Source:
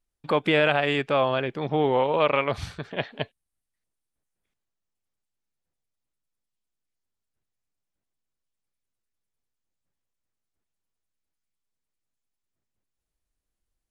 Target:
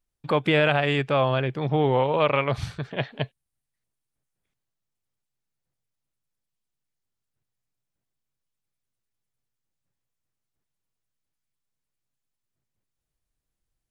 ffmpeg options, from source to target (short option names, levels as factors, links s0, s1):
-af "equalizer=f=130:t=o:w=0.53:g=9"